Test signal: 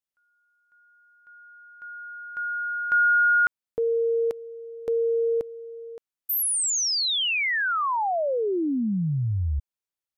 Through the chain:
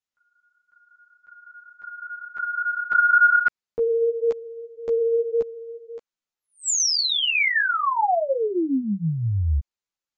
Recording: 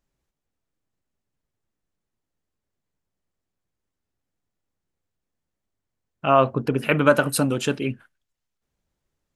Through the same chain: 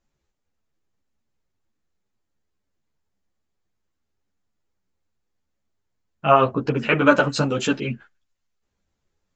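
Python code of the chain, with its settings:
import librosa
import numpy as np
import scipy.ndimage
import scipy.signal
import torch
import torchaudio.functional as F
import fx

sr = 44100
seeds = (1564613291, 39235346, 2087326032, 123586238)

y = scipy.signal.sosfilt(scipy.signal.cheby1(8, 1.0, 7500.0, 'lowpass', fs=sr, output='sos'), x)
y = fx.ensemble(y, sr)
y = y * 10.0 ** (6.0 / 20.0)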